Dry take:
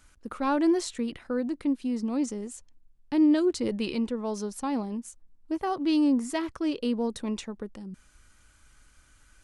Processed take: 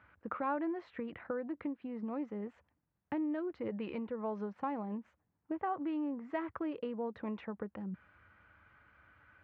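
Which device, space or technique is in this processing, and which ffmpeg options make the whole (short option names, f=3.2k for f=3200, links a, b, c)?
bass amplifier: -filter_complex "[0:a]acompressor=threshold=-35dB:ratio=4,highpass=f=88:w=0.5412,highpass=f=88:w=1.3066,equalizer=f=140:t=q:w=4:g=-8,equalizer=f=250:t=q:w=4:g=-9,equalizer=f=380:t=q:w=4:g=-6,lowpass=f=2.1k:w=0.5412,lowpass=f=2.1k:w=1.3066,asettb=1/sr,asplit=3[a][b][c];[a]atrim=end=5.694[d];[b]atrim=start=5.69:end=6.14,asetpts=PTS-STARTPTS,afade=t=in:d=0.004:c=qsin,afade=t=out:st=0.446:d=0.004:c=qsin,lowpass=3.9k[e];[c]atrim=start=6.136[f];[d][e]acrossfade=d=0.004:c1=hsin:c2=qsin[g];[g][f]acrossfade=d=0.004:c1=qsin:c2=hsin,volume=3dB"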